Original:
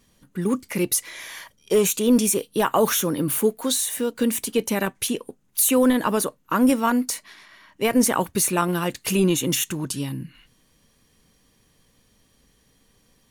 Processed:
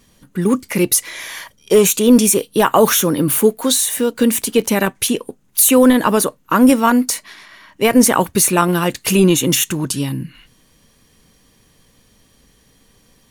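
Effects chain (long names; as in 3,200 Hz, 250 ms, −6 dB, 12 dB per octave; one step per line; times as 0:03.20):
0:04.31–0:04.83: surface crackle 59 per second −34 dBFS
level +7.5 dB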